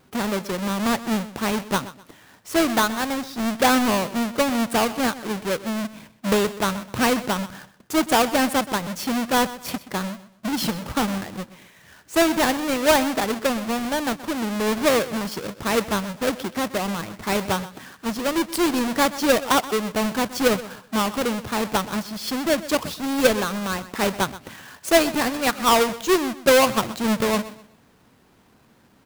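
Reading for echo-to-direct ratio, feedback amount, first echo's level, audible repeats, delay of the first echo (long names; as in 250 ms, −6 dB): −15.5 dB, 28%, −16.0 dB, 2, 126 ms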